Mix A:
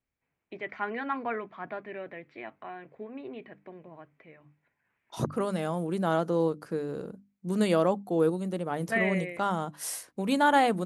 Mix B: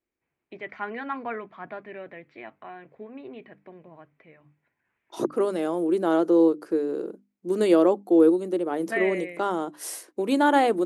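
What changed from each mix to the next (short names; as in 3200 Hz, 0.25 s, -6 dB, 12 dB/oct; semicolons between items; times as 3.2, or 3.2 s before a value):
second voice: add resonant high-pass 340 Hz, resonance Q 4.2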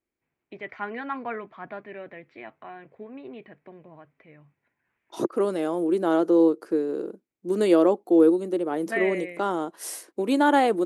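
master: remove notches 50/100/150/200/250/300 Hz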